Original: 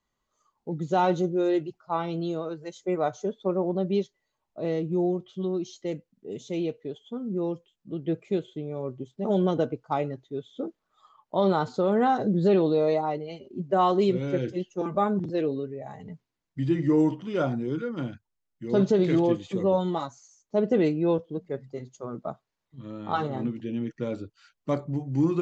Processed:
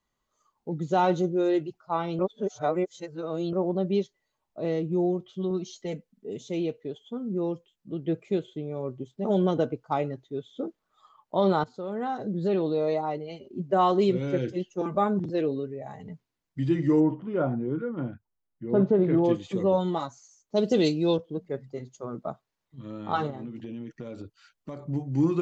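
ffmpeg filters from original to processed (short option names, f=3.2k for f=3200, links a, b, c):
-filter_complex "[0:a]asettb=1/sr,asplit=3[a][b][c];[a]atrim=end=5.504[d];[b]atrim=start=5.5:end=6.3,asetpts=PTS-STARTPTS,afade=t=in:d=0.004:c=qsin,afade=t=out:st=0.796:d=0.004:c=qsin,aecho=1:1:4.6:0.56,atrim=end_sample=35280[e];[c]atrim=start=6.296[f];[d][e]acrossfade=d=0.004:c1=hsin:c2=qsin[g];[g][f]acrossfade=d=0.004:c1=qsin:c2=hsin,asplit=3[h][i][j];[h]afade=t=out:st=16.99:d=0.02[k];[i]lowpass=1.4k,afade=t=in:st=16.99:d=0.02,afade=t=out:st=19.23:d=0.02[l];[j]afade=t=in:st=19.23:d=0.02[m];[k][l][m]amix=inputs=3:normalize=0,asplit=3[n][o][p];[n]afade=t=out:st=20.55:d=0.02[q];[o]highshelf=f=2.8k:t=q:w=1.5:g=13,afade=t=in:st=20.55:d=0.02,afade=t=out:st=21.16:d=0.02[r];[p]afade=t=in:st=21.16:d=0.02[s];[q][r][s]amix=inputs=3:normalize=0,asettb=1/sr,asplit=3[t][u][v];[t]atrim=end=23.304[w];[u]atrim=start=23.3:end=24.87,asetpts=PTS-STARTPTS,afade=t=in:d=0.004:c=qsin,afade=t=out:st=1.566:d=0.004:c=qsin,acompressor=threshold=-33dB:ratio=12:attack=3.2:release=140:knee=1:detection=peak[x];[v]atrim=start=24.866[y];[w][x]acrossfade=d=0.004:c1=hsin:c2=qsin[z];[z][y]acrossfade=d=0.004:c1=qsin:c2=hsin,asplit=4[aa][ab][ac][ad];[aa]atrim=end=2.192[ae];[ab]atrim=start=2.188:end=3.532,asetpts=PTS-STARTPTS,areverse[af];[ac]atrim=start=3.528:end=11.64,asetpts=PTS-STARTPTS,afade=t=out:st=8.108:d=0.004:c=hsin:silence=0.211349[ag];[ad]atrim=start=11.64,asetpts=PTS-STARTPTS,afade=t=in:d=1.89:silence=0.211349[ah];[ae][af]acrossfade=d=0.004:c1=hsin:c2=hsin[ai];[ag][ah]concat=n=2:v=0:a=1[aj];[ai][aj]acrossfade=d=0.004:c1=hsin:c2=hsin"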